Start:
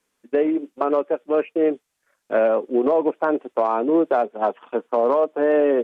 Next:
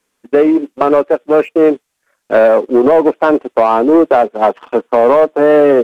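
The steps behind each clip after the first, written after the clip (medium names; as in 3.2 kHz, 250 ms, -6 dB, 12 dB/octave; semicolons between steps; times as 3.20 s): waveshaping leveller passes 1; trim +7.5 dB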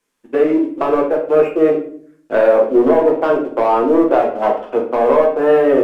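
simulated room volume 65 m³, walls mixed, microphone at 0.75 m; trim -7 dB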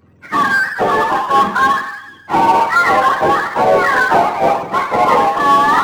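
spectrum inverted on a logarithmic axis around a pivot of 710 Hz; harmonic-percussive split percussive +6 dB; power-law waveshaper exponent 0.7; trim -1 dB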